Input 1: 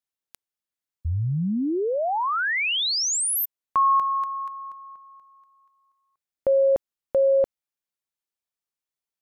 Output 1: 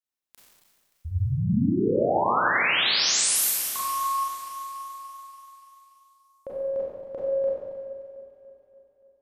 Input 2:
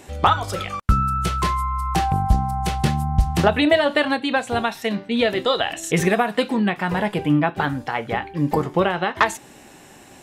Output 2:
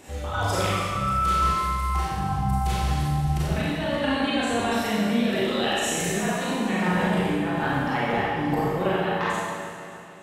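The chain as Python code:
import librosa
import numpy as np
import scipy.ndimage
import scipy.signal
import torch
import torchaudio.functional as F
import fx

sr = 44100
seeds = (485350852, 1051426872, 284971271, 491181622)

y = fx.fade_out_tail(x, sr, length_s=2.93)
y = fx.over_compress(y, sr, threshold_db=-24.0, ratio=-1.0)
y = fx.echo_alternate(y, sr, ms=144, hz=1900.0, feedback_pct=77, wet_db=-11.0)
y = fx.rev_schroeder(y, sr, rt60_s=1.6, comb_ms=30, drr_db=-7.5)
y = y * 10.0 ** (-8.0 / 20.0)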